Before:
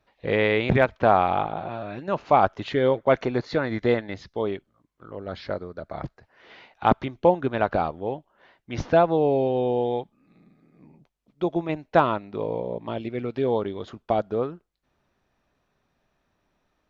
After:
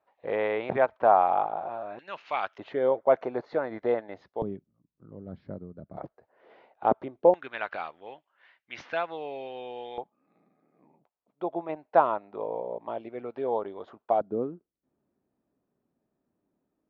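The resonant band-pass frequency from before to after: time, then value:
resonant band-pass, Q 1.4
790 Hz
from 0:01.99 2,600 Hz
from 0:02.58 700 Hz
from 0:04.42 170 Hz
from 0:05.97 540 Hz
from 0:07.34 2,200 Hz
from 0:09.98 780 Hz
from 0:14.21 280 Hz

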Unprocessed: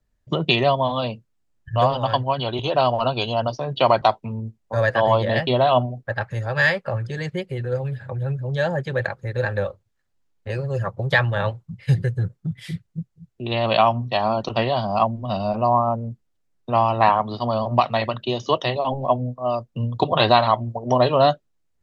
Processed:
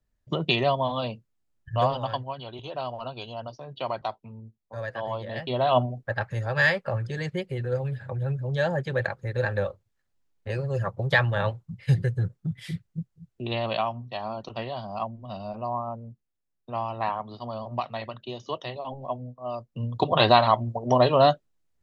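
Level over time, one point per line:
0:01.91 −5 dB
0:02.40 −14 dB
0:05.30 −14 dB
0:05.77 −3 dB
0:13.42 −3 dB
0:13.89 −12 dB
0:19.31 −12 dB
0:20.18 −2 dB

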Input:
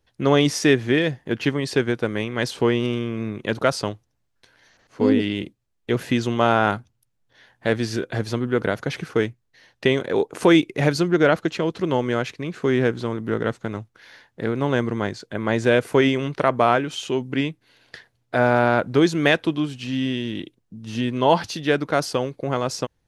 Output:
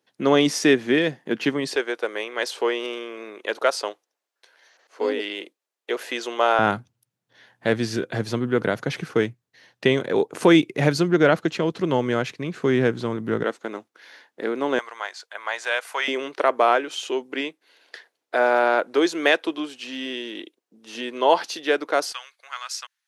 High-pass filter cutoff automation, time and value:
high-pass filter 24 dB per octave
180 Hz
from 0:01.76 410 Hz
from 0:06.59 110 Hz
from 0:13.44 270 Hz
from 0:14.79 750 Hz
from 0:16.08 340 Hz
from 0:22.12 1,300 Hz

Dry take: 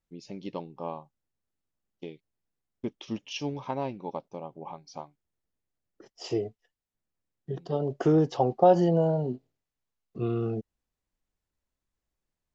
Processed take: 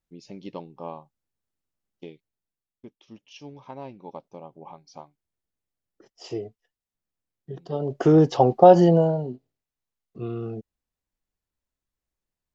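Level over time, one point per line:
0:02.08 −0.5 dB
0:03.01 −13.5 dB
0:04.29 −2.5 dB
0:07.55 −2.5 dB
0:08.22 +7 dB
0:08.91 +7 dB
0:09.32 −2.5 dB

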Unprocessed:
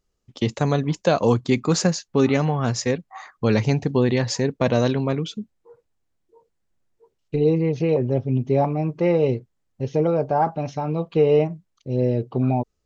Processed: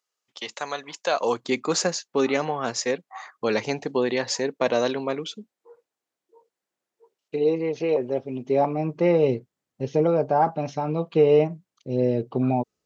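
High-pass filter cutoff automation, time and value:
0:00.98 890 Hz
0:01.50 370 Hz
0:08.34 370 Hz
0:08.99 160 Hz

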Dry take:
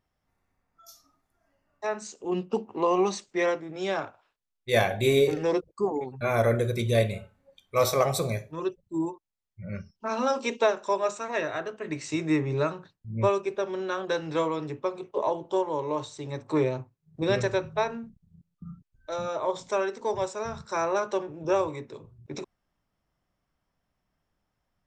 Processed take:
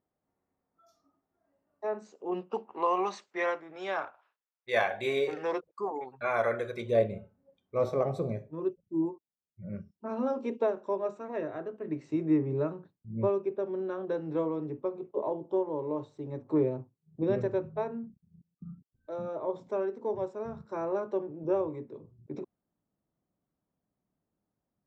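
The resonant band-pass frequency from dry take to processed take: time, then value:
resonant band-pass, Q 0.86
0:01.92 380 Hz
0:02.63 1,200 Hz
0:06.72 1,200 Hz
0:07.17 270 Hz

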